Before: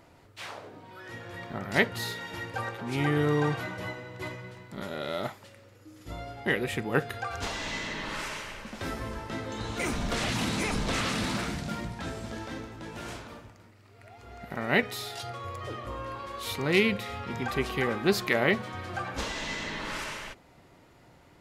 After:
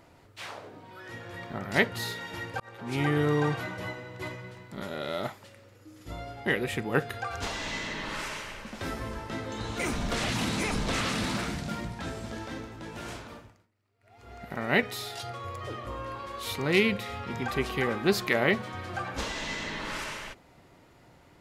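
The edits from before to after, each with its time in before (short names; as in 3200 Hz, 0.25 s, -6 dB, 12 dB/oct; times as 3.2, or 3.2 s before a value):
2.6–2.93 fade in
13.36–14.31 dip -20 dB, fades 0.31 s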